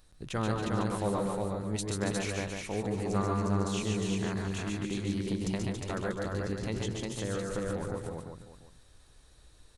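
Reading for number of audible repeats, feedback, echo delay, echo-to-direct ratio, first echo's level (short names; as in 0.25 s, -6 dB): 7, no steady repeat, 0.129 s, 2.0 dB, -5.0 dB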